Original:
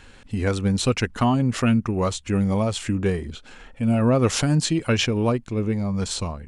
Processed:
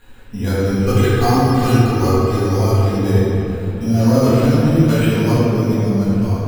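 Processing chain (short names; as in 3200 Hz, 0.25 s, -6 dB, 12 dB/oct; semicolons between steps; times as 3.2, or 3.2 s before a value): careless resampling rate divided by 8×, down filtered, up hold; 0.68–2.82 comb 2.5 ms, depth 84%; reverb RT60 3.4 s, pre-delay 4 ms, DRR -12 dB; gain -7 dB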